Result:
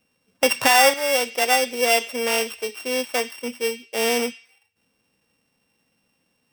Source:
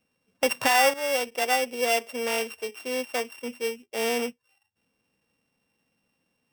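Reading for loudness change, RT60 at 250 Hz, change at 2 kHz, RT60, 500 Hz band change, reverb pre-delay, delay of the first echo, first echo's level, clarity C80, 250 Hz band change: +5.5 dB, 1.0 s, +5.5 dB, 0.70 s, +4.5 dB, 3 ms, no echo audible, no echo audible, 18.5 dB, +4.5 dB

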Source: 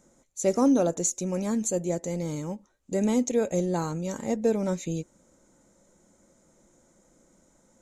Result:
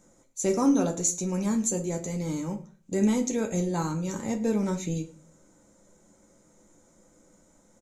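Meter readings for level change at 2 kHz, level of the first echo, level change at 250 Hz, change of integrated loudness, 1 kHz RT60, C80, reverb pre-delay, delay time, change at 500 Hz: +1.0 dB, −22.0 dB, +0.5 dB, −0.5 dB, 0.35 s, 17.5 dB, 10 ms, 108 ms, −3.5 dB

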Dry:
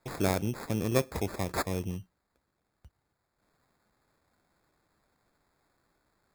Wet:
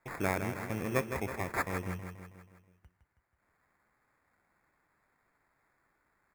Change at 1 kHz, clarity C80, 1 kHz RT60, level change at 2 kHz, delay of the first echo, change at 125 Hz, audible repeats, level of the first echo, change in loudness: 0.0 dB, no reverb audible, no reverb audible, +3.0 dB, 161 ms, −5.0 dB, 6, −8.0 dB, −3.0 dB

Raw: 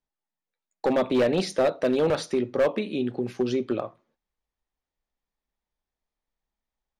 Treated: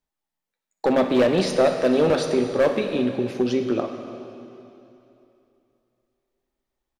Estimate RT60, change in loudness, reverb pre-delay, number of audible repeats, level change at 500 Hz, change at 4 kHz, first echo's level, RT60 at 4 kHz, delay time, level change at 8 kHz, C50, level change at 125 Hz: 2.9 s, +4.0 dB, 5 ms, 1, +4.0 dB, +4.0 dB, −16.0 dB, 2.7 s, 63 ms, +4.0 dB, 6.0 dB, +4.0 dB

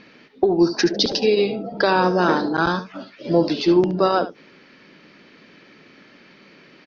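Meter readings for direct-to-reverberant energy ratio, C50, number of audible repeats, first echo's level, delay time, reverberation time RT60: no reverb audible, no reverb audible, 1, −13.5 dB, 71 ms, no reverb audible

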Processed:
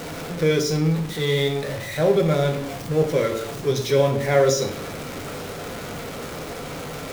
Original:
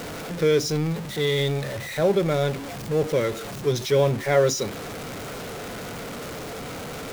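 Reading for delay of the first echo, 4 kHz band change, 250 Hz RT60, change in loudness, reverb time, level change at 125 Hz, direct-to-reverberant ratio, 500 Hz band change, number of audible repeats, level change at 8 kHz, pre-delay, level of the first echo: no echo audible, +1.5 dB, 0.90 s, +2.0 dB, 0.70 s, +3.0 dB, 3.5 dB, +1.5 dB, no echo audible, +1.0 dB, 6 ms, no echo audible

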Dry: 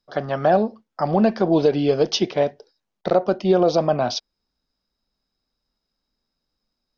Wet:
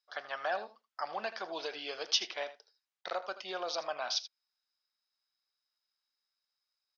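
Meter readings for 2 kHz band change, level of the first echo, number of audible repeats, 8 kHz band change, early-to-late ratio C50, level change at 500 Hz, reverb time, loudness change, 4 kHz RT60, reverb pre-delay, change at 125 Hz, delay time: −5.5 dB, −14.5 dB, 1, can't be measured, no reverb audible, −21.0 dB, no reverb audible, −16.0 dB, no reverb audible, no reverb audible, below −40 dB, 80 ms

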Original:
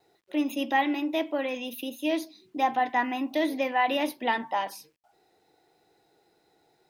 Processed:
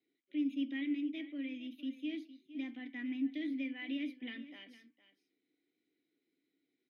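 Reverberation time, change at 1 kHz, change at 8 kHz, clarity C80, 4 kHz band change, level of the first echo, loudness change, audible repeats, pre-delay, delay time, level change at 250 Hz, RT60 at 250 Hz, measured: no reverb audible, −39.5 dB, below −25 dB, no reverb audible, −13.5 dB, −15.5 dB, −11.5 dB, 1, no reverb audible, 460 ms, −6.5 dB, no reverb audible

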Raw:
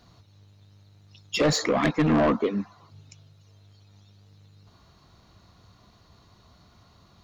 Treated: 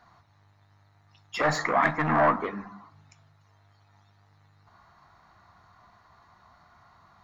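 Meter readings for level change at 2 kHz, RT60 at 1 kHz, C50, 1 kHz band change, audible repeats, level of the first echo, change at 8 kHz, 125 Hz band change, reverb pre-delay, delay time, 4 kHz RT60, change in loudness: +4.0 dB, 0.40 s, 19.0 dB, +5.5 dB, no echo audible, no echo audible, can't be measured, −5.5 dB, 8 ms, no echo audible, 0.30 s, −1.5 dB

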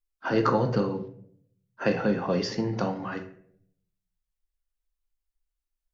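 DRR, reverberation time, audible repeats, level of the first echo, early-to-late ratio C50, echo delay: 5.0 dB, 0.65 s, no echo audible, no echo audible, 10.0 dB, no echo audible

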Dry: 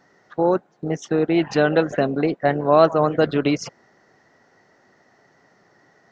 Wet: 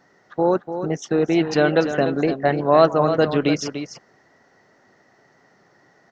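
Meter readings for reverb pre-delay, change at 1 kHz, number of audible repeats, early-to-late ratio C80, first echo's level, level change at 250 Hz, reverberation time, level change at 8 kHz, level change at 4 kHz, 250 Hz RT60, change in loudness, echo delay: no reverb audible, +0.5 dB, 1, no reverb audible, −9.5 dB, +0.5 dB, no reverb audible, can't be measured, +2.0 dB, no reverb audible, +0.5 dB, 294 ms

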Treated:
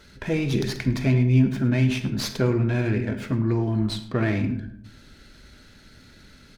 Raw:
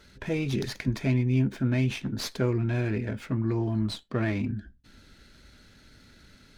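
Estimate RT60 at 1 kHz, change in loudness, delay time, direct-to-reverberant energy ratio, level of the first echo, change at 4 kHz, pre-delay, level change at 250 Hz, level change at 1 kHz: 0.70 s, +5.0 dB, 105 ms, 9.0 dB, −18.0 dB, +4.5 dB, 34 ms, +5.0 dB, +4.5 dB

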